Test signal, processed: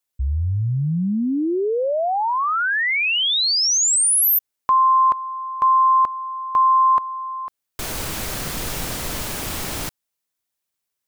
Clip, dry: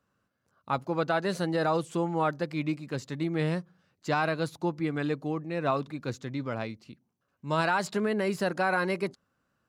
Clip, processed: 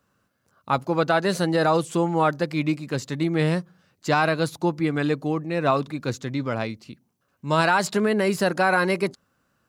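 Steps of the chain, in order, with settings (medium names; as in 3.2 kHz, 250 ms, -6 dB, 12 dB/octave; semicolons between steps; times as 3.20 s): treble shelf 5.7 kHz +5 dB; trim +6.5 dB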